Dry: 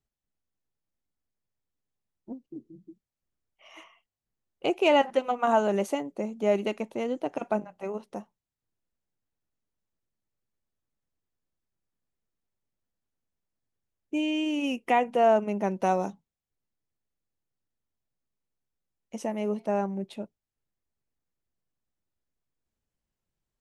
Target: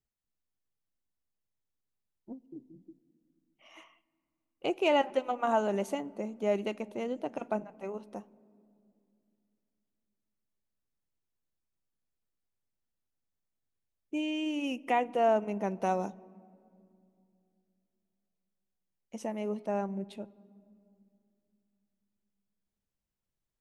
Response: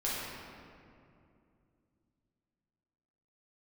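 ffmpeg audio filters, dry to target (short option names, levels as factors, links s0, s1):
-filter_complex "[0:a]asplit=2[s0][s1];[1:a]atrim=start_sample=2205,lowshelf=f=340:g=10[s2];[s1][s2]afir=irnorm=-1:irlink=0,volume=0.0335[s3];[s0][s3]amix=inputs=2:normalize=0,volume=0.562"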